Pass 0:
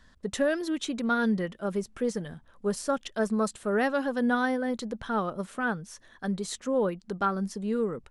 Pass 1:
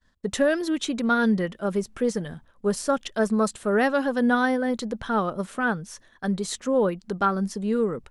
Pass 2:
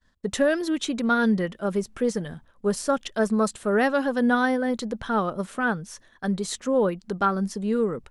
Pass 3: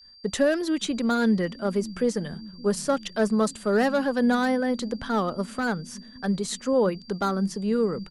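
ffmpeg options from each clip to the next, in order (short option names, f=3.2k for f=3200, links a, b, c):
-af "agate=range=-33dB:threshold=-48dB:ratio=3:detection=peak,volume=4.5dB"
-af anull
-filter_complex "[0:a]aeval=exprs='val(0)+0.00355*sin(2*PI*4700*n/s)':c=same,acrossover=split=220|960|3100[a][b][c][d];[a]aecho=1:1:570|1140|1710|2280|2850|3420|3990:0.316|0.187|0.11|0.0649|0.0383|0.0226|0.0133[e];[c]volume=31dB,asoftclip=hard,volume=-31dB[f];[e][b][f][d]amix=inputs=4:normalize=0"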